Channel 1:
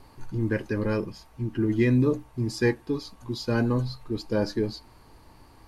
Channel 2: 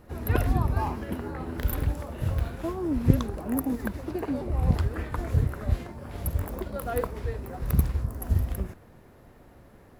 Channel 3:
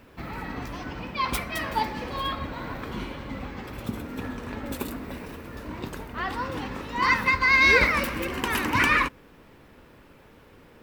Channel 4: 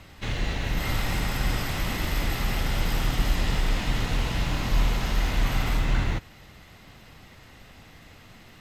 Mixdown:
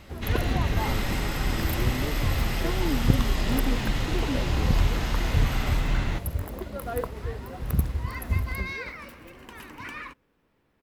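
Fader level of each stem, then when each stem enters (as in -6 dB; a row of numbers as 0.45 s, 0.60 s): -12.5 dB, -1.5 dB, -17.5 dB, -1.5 dB; 0.00 s, 0.00 s, 1.05 s, 0.00 s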